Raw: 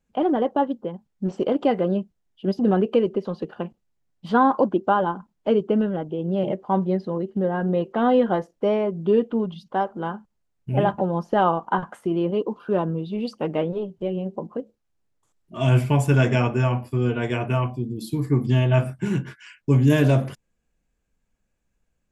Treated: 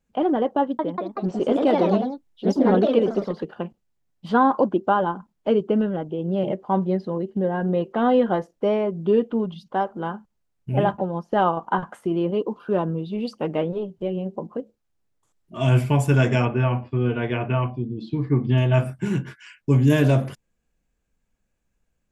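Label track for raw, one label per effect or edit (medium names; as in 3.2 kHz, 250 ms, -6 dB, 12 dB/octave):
0.600000	3.560000	ever faster or slower copies 189 ms, each echo +2 st, echoes 3
7.150000	7.650000	band-stop 1.3 kHz, Q 6.8
10.970000	11.570000	upward expansion, over -33 dBFS
16.450000	18.580000	low-pass 3.6 kHz 24 dB/octave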